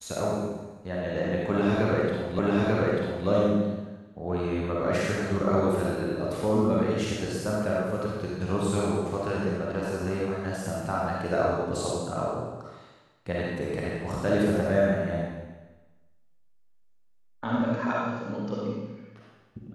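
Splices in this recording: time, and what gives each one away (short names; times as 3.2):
2.39 repeat of the last 0.89 s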